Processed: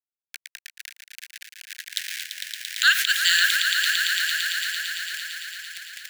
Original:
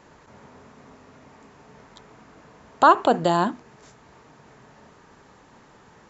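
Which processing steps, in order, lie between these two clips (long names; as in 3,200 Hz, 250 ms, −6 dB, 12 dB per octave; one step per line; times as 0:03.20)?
hold until the input has moved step −39 dBFS
in parallel at −2.5 dB: compressor whose output falls as the input rises −34 dBFS, ratio −1
on the sum: Butterworth high-pass 1,600 Hz 96 dB per octave
echo that builds up and dies away 113 ms, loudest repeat 5, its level −10 dB
boost into a limiter +19.5 dB
level −4.5 dB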